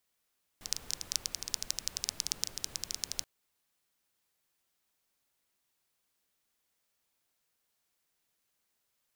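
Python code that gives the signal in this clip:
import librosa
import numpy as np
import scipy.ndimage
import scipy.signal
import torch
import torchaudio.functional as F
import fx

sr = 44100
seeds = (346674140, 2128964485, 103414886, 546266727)

y = fx.rain(sr, seeds[0], length_s=2.63, drops_per_s=13.0, hz=5500.0, bed_db=-13.0)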